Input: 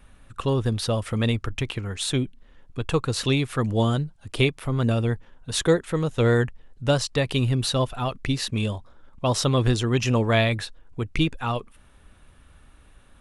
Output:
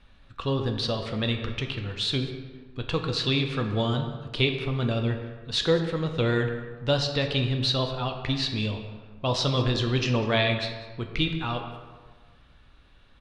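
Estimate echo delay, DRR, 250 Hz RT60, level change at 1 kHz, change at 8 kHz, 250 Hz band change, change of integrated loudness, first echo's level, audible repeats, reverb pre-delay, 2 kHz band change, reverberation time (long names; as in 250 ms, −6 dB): 197 ms, 4.0 dB, 1.5 s, −3.0 dB, −10.5 dB, −3.5 dB, −2.5 dB, −17.5 dB, 1, 6 ms, −1.5 dB, 1.5 s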